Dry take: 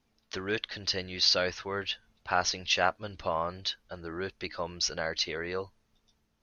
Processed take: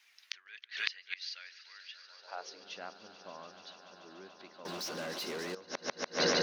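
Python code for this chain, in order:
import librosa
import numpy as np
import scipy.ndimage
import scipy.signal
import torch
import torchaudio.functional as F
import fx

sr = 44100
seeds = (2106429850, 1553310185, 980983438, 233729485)

y = fx.echo_swell(x, sr, ms=145, loudest=5, wet_db=-15.0)
y = fx.leveller(y, sr, passes=5, at=(4.65, 5.55))
y = fx.gate_flip(y, sr, shuts_db=-28.0, range_db=-31)
y = fx.filter_sweep_highpass(y, sr, from_hz=2000.0, to_hz=230.0, start_s=1.9, end_s=2.68, q=2.2)
y = F.gain(torch.from_numpy(y), 11.5).numpy()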